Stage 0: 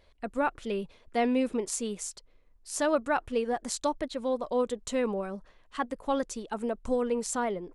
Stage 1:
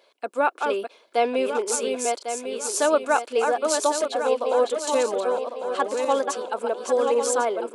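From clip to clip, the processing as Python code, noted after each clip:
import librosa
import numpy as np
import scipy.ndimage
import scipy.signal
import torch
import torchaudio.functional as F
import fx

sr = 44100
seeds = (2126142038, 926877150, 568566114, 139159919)

y = fx.reverse_delay_fb(x, sr, ms=550, feedback_pct=60, wet_db=-4.5)
y = scipy.signal.sosfilt(scipy.signal.butter(4, 350.0, 'highpass', fs=sr, output='sos'), y)
y = fx.notch(y, sr, hz=1900.0, q=5.6)
y = F.gain(torch.from_numpy(y), 7.0).numpy()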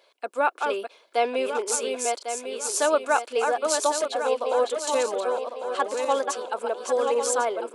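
y = fx.highpass(x, sr, hz=420.0, slope=6)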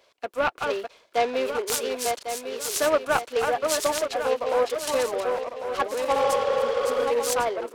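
y = fx.notch(x, sr, hz=870.0, q=18.0)
y = fx.spec_repair(y, sr, seeds[0], start_s=6.18, length_s=0.81, low_hz=310.0, high_hz=6100.0, source='both')
y = fx.noise_mod_delay(y, sr, seeds[1], noise_hz=1200.0, depth_ms=0.036)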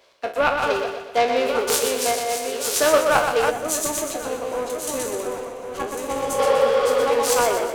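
y = fx.spec_trails(x, sr, decay_s=0.3)
y = fx.echo_feedback(y, sr, ms=123, feedback_pct=46, wet_db=-6.0)
y = fx.spec_box(y, sr, start_s=3.5, length_s=2.89, low_hz=410.0, high_hz=5800.0, gain_db=-9)
y = F.gain(torch.from_numpy(y), 3.5).numpy()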